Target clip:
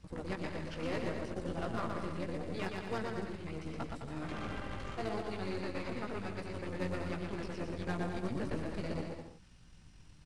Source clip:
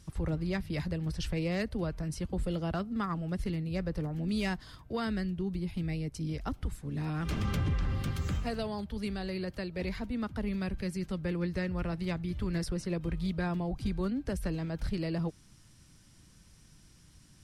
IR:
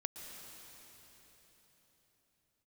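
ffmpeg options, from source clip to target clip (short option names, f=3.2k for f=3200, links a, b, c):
-filter_complex "[0:a]acrossover=split=280|3900[a][b][c];[a]acompressor=threshold=-47dB:ratio=8[d];[c]alimiter=level_in=18dB:limit=-24dB:level=0:latency=1:release=244,volume=-18dB[e];[d][b][e]amix=inputs=3:normalize=0,atempo=1.7,flanger=delay=16:depth=4:speed=0.74,asplit=2[f][g];[g]asetrate=22050,aresample=44100,atempo=2,volume=-4dB[h];[f][h]amix=inputs=2:normalize=0,highshelf=f=5.3k:g=-10.5,acrusher=bits=6:mode=log:mix=0:aa=0.000001,aresample=22050,aresample=44100,aeval=exprs='0.0562*(cos(1*acos(clip(val(0)/0.0562,-1,1)))-cos(1*PI/2))+0.00447*(cos(8*acos(clip(val(0)/0.0562,-1,1)))-cos(8*PI/2))':c=same,asplit=2[i][j];[j]aecho=0:1:120|210|277.5|328.1|366.1:0.631|0.398|0.251|0.158|0.1[k];[i][k]amix=inputs=2:normalize=0"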